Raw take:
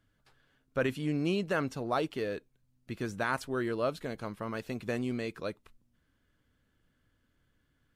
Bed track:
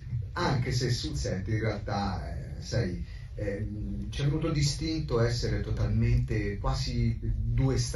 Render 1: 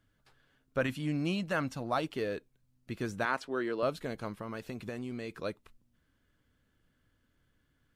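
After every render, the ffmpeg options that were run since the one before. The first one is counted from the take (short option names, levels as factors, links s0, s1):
-filter_complex "[0:a]asettb=1/sr,asplit=3[s0][s1][s2];[s0]atrim=end=0.814[s3];[s1]atrim=start=0.81:end=2.07,asetpts=PTS-STARTPTS,afade=t=in:d=0.004:c=qsin,afade=t=out:st=1.256:d=0.004:c=qsin,equalizer=f=410:t=o:w=0.26:g=-15[s4];[s2]atrim=start=2.066[s5];[s3][s4]acrossfade=d=0.004:c1=hsin:c2=qsin[s6];[s6][s5]acrossfade=d=0.004:c1=qsin:c2=hsin,asettb=1/sr,asplit=3[s7][s8][s9];[s7]atrim=end=3.254[s10];[s8]atrim=start=3.25:end=3.83,asetpts=PTS-STARTPTS,afade=t=in:d=0.004:c=qsin,afade=t=out:st=0.576:d=0.004:c=qsin,acrossover=split=210 6200:gain=0.158 1 0.224[s11][s12][s13];[s11][s12][s13]amix=inputs=3:normalize=0[s14];[s9]atrim=start=3.826[s15];[s10][s14]acrossfade=d=0.004:c1=hsin:c2=qsin[s16];[s16][s15]acrossfade=d=0.004:c1=qsin:c2=hsin,asettb=1/sr,asplit=3[s17][s18][s19];[s17]atrim=end=4.354[s20];[s18]atrim=start=4.35:end=5.42,asetpts=PTS-STARTPTS,afade=t=in:d=0.004:c=qsin,afade=t=out:st=1.066:d=0.004:c=qsin,acompressor=threshold=0.02:ratio=6:attack=3.2:release=140:knee=1:detection=peak[s21];[s19]atrim=start=5.416[s22];[s20][s21]acrossfade=d=0.004:c1=hsin:c2=qsin[s23];[s23][s22]acrossfade=d=0.004:c1=qsin:c2=hsin"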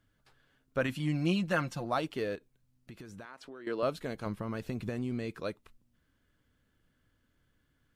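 -filter_complex "[0:a]asettb=1/sr,asplit=3[s0][s1][s2];[s0]atrim=end=0.954[s3];[s1]atrim=start=0.95:end=1.85,asetpts=PTS-STARTPTS,afade=t=in:d=0.004:c=qsin,afade=t=out:st=0.896:d=0.004:c=qsin,aecho=1:1:5.7:0.65,atrim=end_sample=39690[s4];[s2]atrim=start=1.846[s5];[s3][s4]acrossfade=d=0.004:c1=hsin:c2=qsin[s6];[s6][s5]acrossfade=d=0.004:c1=qsin:c2=hsin,asettb=1/sr,asplit=3[s7][s8][s9];[s7]atrim=end=2.354[s10];[s8]atrim=start=2.35:end=3.67,asetpts=PTS-STARTPTS,afade=t=in:d=0.004:c=qsin,afade=t=out:st=1.316:d=0.004:c=qsin,acompressor=threshold=0.00708:ratio=10:attack=3.2:release=140:knee=1:detection=peak[s11];[s9]atrim=start=3.666[s12];[s10][s11]acrossfade=d=0.004:c1=hsin:c2=qsin[s13];[s13][s12]acrossfade=d=0.004:c1=qsin:c2=hsin,asettb=1/sr,asplit=3[s14][s15][s16];[s14]atrim=end=4.264[s17];[s15]atrim=start=4.26:end=5.31,asetpts=PTS-STARTPTS,afade=t=in:d=0.004:c=qsin,afade=t=out:st=1.046:d=0.004:c=qsin,lowshelf=f=260:g=8.5[s18];[s16]atrim=start=5.306[s19];[s17][s18]acrossfade=d=0.004:c1=hsin:c2=qsin[s20];[s20][s19]acrossfade=d=0.004:c1=qsin:c2=hsin"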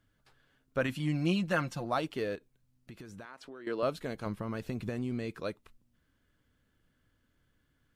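-af anull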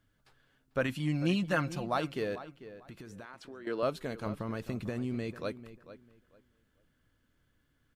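-filter_complex "[0:a]asplit=2[s0][s1];[s1]adelay=445,lowpass=f=3000:p=1,volume=0.2,asplit=2[s2][s3];[s3]adelay=445,lowpass=f=3000:p=1,volume=0.23,asplit=2[s4][s5];[s5]adelay=445,lowpass=f=3000:p=1,volume=0.23[s6];[s0][s2][s4][s6]amix=inputs=4:normalize=0"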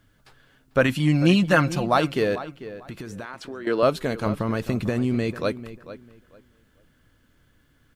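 -af "volume=3.76"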